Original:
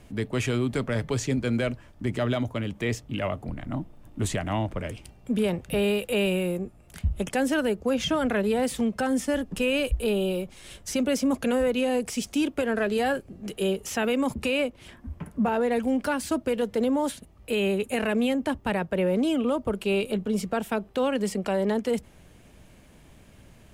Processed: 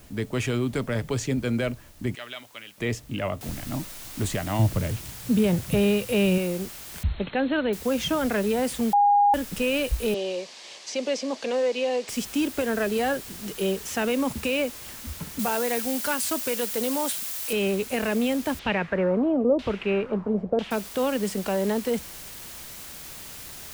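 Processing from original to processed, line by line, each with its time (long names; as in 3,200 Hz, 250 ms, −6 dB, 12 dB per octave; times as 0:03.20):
0:02.15–0:02.78: resonant band-pass 2,800 Hz, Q 1.2
0:03.41: noise floor change −56 dB −41 dB
0:04.59–0:06.38: parametric band 120 Hz +11.5 dB 1.4 octaves
0:07.03–0:07.73: linear-phase brick-wall low-pass 4,300 Hz
0:08.93–0:09.34: beep over 816 Hz −15 dBFS
0:10.14–0:12.09: loudspeaker in its box 420–6,600 Hz, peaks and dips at 530 Hz +3 dB, 1,400 Hz −9 dB, 4,500 Hz +4 dB
0:15.39–0:17.53: spectral tilt +2.5 dB per octave
0:18.59–0:20.71: auto-filter low-pass saw down 1 Hz 460–3,600 Hz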